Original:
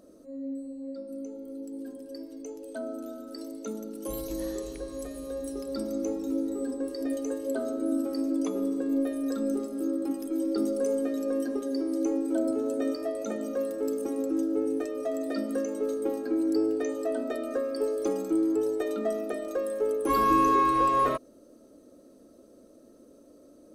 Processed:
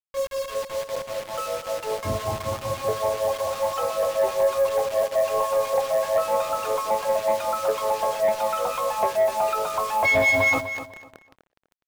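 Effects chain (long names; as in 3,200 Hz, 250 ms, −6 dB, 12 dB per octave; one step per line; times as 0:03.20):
adaptive Wiener filter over 15 samples
elliptic low-pass filter 2,700 Hz, stop band 40 dB
parametric band 86 Hz +12 dB 2.2 octaves
mains-hum notches 60/120/180/240/300/360/420/480/540/600 Hz
in parallel at −2.5 dB: downward compressor, threshold −33 dBFS, peak gain reduction 14.5 dB
on the sum: two-band tremolo in antiphase 2.6 Hz, depth 100%, crossover 630 Hz
bit reduction 7 bits
soft clipping −21.5 dBFS, distortion −18 dB
on a send: repeating echo 499 ms, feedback 26%, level −11 dB
on the sum: wrong playback speed 7.5 ips tape played at 15 ips
one half of a high-frequency compander decoder only
level +8 dB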